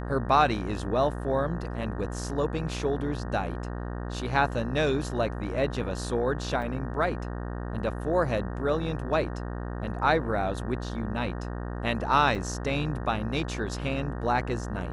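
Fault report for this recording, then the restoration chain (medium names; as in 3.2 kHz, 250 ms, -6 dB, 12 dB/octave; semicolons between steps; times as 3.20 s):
buzz 60 Hz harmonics 31 -34 dBFS
6.62 s: dropout 4.1 ms
12.35 s: dropout 4.6 ms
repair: de-hum 60 Hz, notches 31; interpolate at 6.62 s, 4.1 ms; interpolate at 12.35 s, 4.6 ms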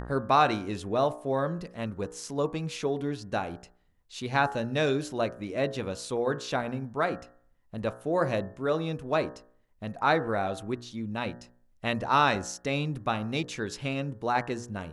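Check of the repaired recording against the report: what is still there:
nothing left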